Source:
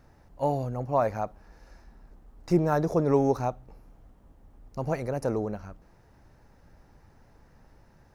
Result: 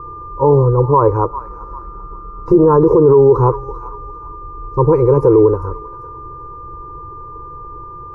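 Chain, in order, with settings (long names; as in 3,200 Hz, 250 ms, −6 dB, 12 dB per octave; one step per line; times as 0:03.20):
steady tone 1,200 Hz −46 dBFS
drawn EQ curve 140 Hz 0 dB, 230 Hz −23 dB, 330 Hz +6 dB, 480 Hz +7 dB, 680 Hz −27 dB, 990 Hz +8 dB, 1,800 Hz −26 dB, 3,000 Hz −30 dB
on a send: delay with a high-pass on its return 394 ms, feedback 34%, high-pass 1,500 Hz, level −10 dB
0:01.25–0:02.65: on the sum: amplitude modulation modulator 150 Hz, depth 20%
0:04.93–0:05.43: parametric band 2,300 Hz +10 dB 0.3 octaves
boost into a limiter +21 dB
level −1 dB
AAC 64 kbit/s 44,100 Hz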